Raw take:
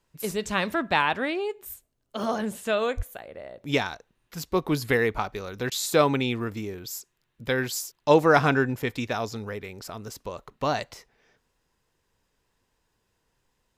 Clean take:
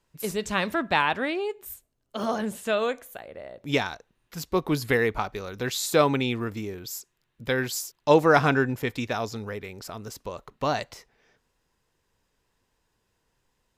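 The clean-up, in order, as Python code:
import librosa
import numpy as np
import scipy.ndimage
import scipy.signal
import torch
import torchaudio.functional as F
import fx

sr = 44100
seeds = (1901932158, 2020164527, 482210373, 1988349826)

y = fx.highpass(x, sr, hz=140.0, slope=24, at=(2.96, 3.08), fade=0.02)
y = fx.fix_interpolate(y, sr, at_s=(5.7,), length_ms=14.0)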